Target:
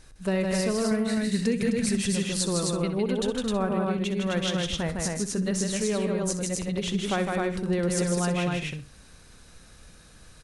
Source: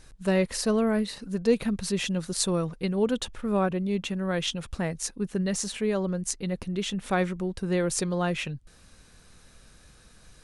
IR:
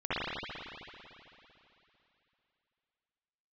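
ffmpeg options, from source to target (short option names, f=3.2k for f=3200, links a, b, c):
-filter_complex "[0:a]asettb=1/sr,asplit=3[a][b][c];[a]atrim=end=0.914[d];[b]atrim=start=0.91:end=1.97,asetpts=PTS-STARTPTS,afade=t=in:d=0.004:c=qsin,afade=t=out:st=1.056:d=0.004:c=qsin,equalizer=f=125:t=o:w=1:g=10,equalizer=f=250:t=o:w=1:g=4,equalizer=f=1k:t=o:w=1:g=-6,equalizer=f=2k:t=o:w=1:g=10,equalizer=f=8k:t=o:w=1:g=10[e];[c]atrim=start=1.966[f];[d][e]acrossfade=d=0.004:c1=hsin:c2=qsin[g];[g][f]acrossfade=d=0.004:c1=qsin:c2=hsin,asplit=2[h][i];[i]aecho=0:1:157.4|259.5:0.631|0.708[j];[h][j]amix=inputs=2:normalize=0,acompressor=threshold=-22dB:ratio=6,asplit=2[k][l];[l]aecho=0:1:63|126|189:0.224|0.056|0.014[m];[k][m]amix=inputs=2:normalize=0"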